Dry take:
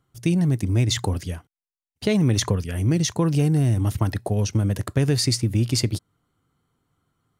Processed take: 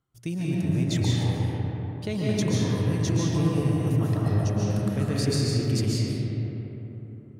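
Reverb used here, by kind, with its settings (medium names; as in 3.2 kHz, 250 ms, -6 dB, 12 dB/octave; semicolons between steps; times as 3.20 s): algorithmic reverb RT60 3.9 s, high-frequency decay 0.4×, pre-delay 100 ms, DRR -6.5 dB; trim -10.5 dB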